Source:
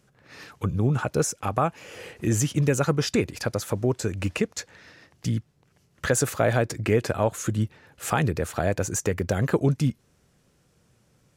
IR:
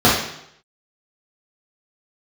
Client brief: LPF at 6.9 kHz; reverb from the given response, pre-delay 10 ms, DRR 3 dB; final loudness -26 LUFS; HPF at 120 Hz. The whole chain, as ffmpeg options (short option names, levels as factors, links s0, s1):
-filter_complex "[0:a]highpass=120,lowpass=6900,asplit=2[s0][s1];[1:a]atrim=start_sample=2205,adelay=10[s2];[s1][s2]afir=irnorm=-1:irlink=0,volume=0.0376[s3];[s0][s3]amix=inputs=2:normalize=0,volume=0.708"